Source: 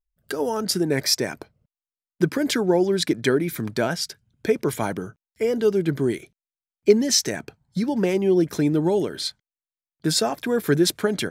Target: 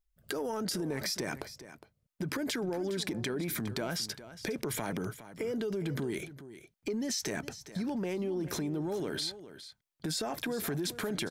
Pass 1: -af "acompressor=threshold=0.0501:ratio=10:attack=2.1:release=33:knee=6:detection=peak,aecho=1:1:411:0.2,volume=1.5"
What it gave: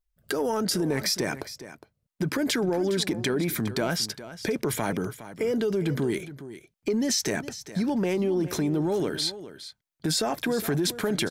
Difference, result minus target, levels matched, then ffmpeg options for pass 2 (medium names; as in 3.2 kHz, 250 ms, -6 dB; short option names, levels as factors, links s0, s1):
compression: peak gain reduction -8.5 dB
-af "acompressor=threshold=0.0168:ratio=10:attack=2.1:release=33:knee=6:detection=peak,aecho=1:1:411:0.2,volume=1.5"